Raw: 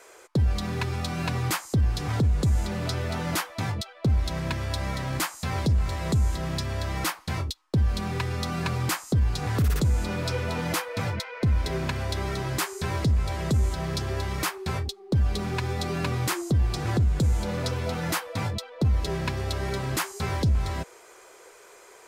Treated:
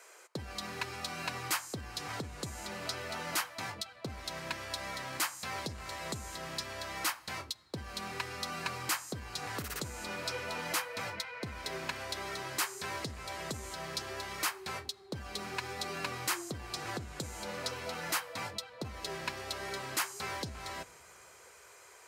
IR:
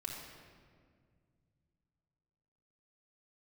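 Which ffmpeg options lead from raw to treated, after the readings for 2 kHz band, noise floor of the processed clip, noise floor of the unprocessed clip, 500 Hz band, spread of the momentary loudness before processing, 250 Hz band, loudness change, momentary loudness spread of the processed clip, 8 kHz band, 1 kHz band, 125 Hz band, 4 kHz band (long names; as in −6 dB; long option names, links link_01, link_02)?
−4.0 dB, −56 dBFS, −51 dBFS, −9.5 dB, 5 LU, −15.0 dB, −10.5 dB, 7 LU, −3.0 dB, −6.0 dB, −22.0 dB, −3.5 dB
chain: -filter_complex "[0:a]highpass=frequency=910:poles=1,bandreject=frequency=3500:width=19,asplit=2[link_01][link_02];[1:a]atrim=start_sample=2205,asetrate=35280,aresample=44100[link_03];[link_02][link_03]afir=irnorm=-1:irlink=0,volume=-20dB[link_04];[link_01][link_04]amix=inputs=2:normalize=0,volume=-3.5dB"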